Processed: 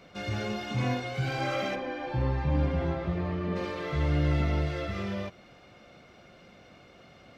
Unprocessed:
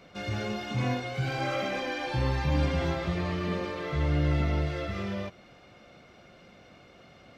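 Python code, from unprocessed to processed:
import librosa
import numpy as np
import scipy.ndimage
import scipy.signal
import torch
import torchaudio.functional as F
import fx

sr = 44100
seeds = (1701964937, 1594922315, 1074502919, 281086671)

y = fx.lowpass(x, sr, hz=1100.0, slope=6, at=(1.74, 3.55), fade=0.02)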